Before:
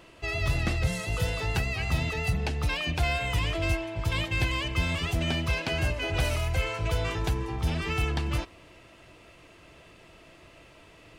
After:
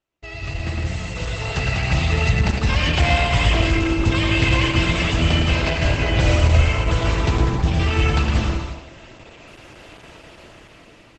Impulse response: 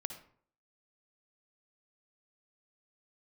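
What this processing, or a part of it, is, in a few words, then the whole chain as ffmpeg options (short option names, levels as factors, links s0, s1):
speakerphone in a meeting room: -filter_complex "[0:a]asettb=1/sr,asplit=3[s0][s1][s2];[s0]atrim=end=5.964[s3];[s1]atrim=start=5.96:end=7.67,asetpts=PTS-STARTPTS,afade=t=in:d=0.004:c=qsin,afade=t=out:st=1.706:d=0.004:c=qsin,lowshelf=f=200:g=3[s4];[s2]atrim=start=7.666[s5];[s3][s4]acrossfade=d=0.004:c1=hsin:c2=qsin[s6];[s6][s5]acrossfade=d=0.004:c1=qsin:c2=hsin,aecho=1:1:110|198|268.4|324.7|369.8:0.631|0.398|0.251|0.158|0.1[s7];[1:a]atrim=start_sample=2205[s8];[s7][s8]afir=irnorm=-1:irlink=0,asplit=2[s9][s10];[s10]adelay=220,highpass=300,lowpass=3400,asoftclip=type=hard:threshold=0.0944,volume=0.0631[s11];[s9][s11]amix=inputs=2:normalize=0,dynaudnorm=f=350:g=9:m=5.01,agate=range=0.0398:threshold=0.00447:ratio=16:detection=peak,volume=0.841" -ar 48000 -c:a libopus -b:a 12k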